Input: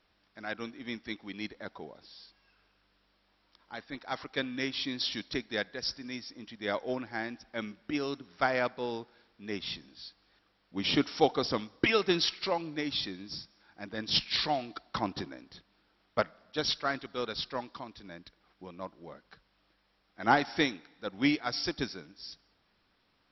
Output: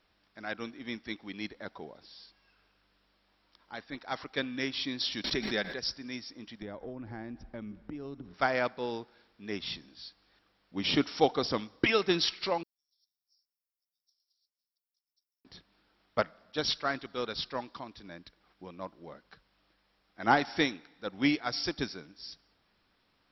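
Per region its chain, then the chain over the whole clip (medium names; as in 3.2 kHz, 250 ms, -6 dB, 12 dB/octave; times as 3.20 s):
5.24–5.79 s: comb 5.2 ms, depth 33% + swell ahead of each attack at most 38 dB/s
6.62–8.34 s: tilt EQ -4 dB/octave + compression 16:1, threshold -37 dBFS
12.63–15.45 s: compressor with a negative ratio -36 dBFS + inverse Chebyshev high-pass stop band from 2.3 kHz, stop band 80 dB
whole clip: none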